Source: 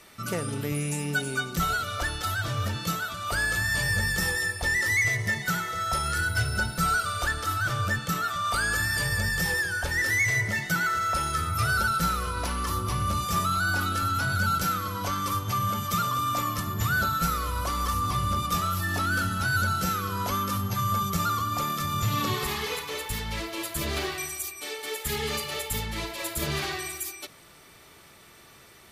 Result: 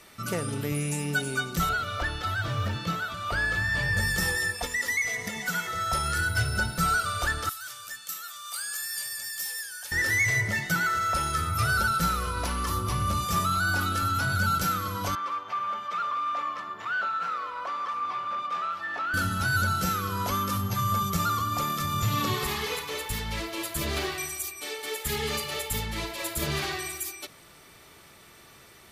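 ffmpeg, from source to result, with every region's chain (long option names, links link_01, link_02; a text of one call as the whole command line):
ffmpeg -i in.wav -filter_complex "[0:a]asettb=1/sr,asplit=3[link_01][link_02][link_03];[link_01]atrim=end=1.694[link_04];[link_02]atrim=start=1.69:end=3.97,asetpts=PTS-STARTPTS,afade=type=in:duration=0.004:curve=qsin,afade=type=out:start_time=2.276:duration=0.004:curve=qsin,acrusher=bits=8:mode=log:mix=0:aa=0.000001,acrossover=split=4400[link_05][link_06];[link_06]acompressor=threshold=-51dB:ratio=4:attack=1:release=60[link_07];[link_05][link_07]amix=inputs=2:normalize=0[link_08];[link_03]atrim=start=3.966[link_09];[link_04][link_08]acrossfade=duration=0.004:curve1=hsin:curve2=qsin[link_10];[link_10][link_09]acrossfade=duration=0.004:curve1=qsin:curve2=hsin,asettb=1/sr,asplit=3[link_11][link_12][link_13];[link_11]atrim=end=4.544[link_14];[link_12]atrim=start=4.54:end=5.67,asetpts=PTS-STARTPTS,afade=type=in:duration=0.004:curve=qsin,afade=type=out:start_time=1.126:duration=0.004:curve=qsin,lowshelf=frequency=180:gain=-8.5,acompressor=threshold=-28dB:ratio=3:attack=3.2:release=140:knee=1:detection=peak,aecho=1:1:4.2:0.98,atrim=end_sample=49833[link_15];[link_13]atrim=start=5.666[link_16];[link_14][link_15]acrossfade=duration=0.004:curve1=hsin:curve2=qsin[link_17];[link_17][link_16]acrossfade=duration=0.004:curve1=qsin:curve2=hsin,asettb=1/sr,asplit=3[link_18][link_19][link_20];[link_18]atrim=end=7.494[link_21];[link_19]atrim=start=7.49:end=9.92,asetpts=PTS-STARTPTS,afade=type=in:duration=0.004:curve=qsin,afade=type=out:start_time=2.426:duration=0.004:curve=qsin,aderivative,asoftclip=type=hard:threshold=-25.5dB[link_22];[link_20]atrim=start=9.916[link_23];[link_21][link_22]acrossfade=duration=0.004:curve1=hsin:curve2=qsin[link_24];[link_24][link_23]acrossfade=duration=0.004:curve1=qsin:curve2=hsin,asettb=1/sr,asplit=3[link_25][link_26][link_27];[link_25]atrim=end=15.154[link_28];[link_26]atrim=start=15.15:end=19.14,asetpts=PTS-STARTPTS,afade=type=in:duration=0.004:curve=qsin,afade=type=out:start_time=3.986:duration=0.004:curve=qsin,asoftclip=type=hard:threshold=-23.5dB,highpass=610,lowpass=2300[link_29];[link_27]atrim=start=19.136[link_30];[link_28][link_29]acrossfade=duration=0.004:curve1=hsin:curve2=qsin[link_31];[link_31][link_30]acrossfade=duration=0.004:curve1=qsin:curve2=hsin" out.wav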